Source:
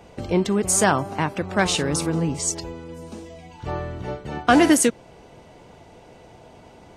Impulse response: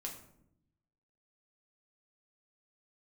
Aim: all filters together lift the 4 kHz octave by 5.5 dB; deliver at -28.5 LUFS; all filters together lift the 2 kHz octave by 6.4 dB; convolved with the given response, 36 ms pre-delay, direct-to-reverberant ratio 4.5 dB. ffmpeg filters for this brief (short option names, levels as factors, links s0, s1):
-filter_complex "[0:a]equalizer=f=2000:t=o:g=7.5,equalizer=f=4000:t=o:g=4.5,asplit=2[s0][s1];[1:a]atrim=start_sample=2205,adelay=36[s2];[s1][s2]afir=irnorm=-1:irlink=0,volume=0.75[s3];[s0][s3]amix=inputs=2:normalize=0,volume=0.299"